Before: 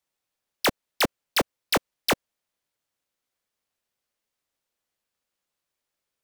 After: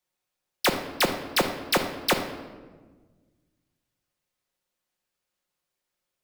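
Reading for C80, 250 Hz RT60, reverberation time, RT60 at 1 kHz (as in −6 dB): 10.0 dB, 1.9 s, 1.4 s, 1.3 s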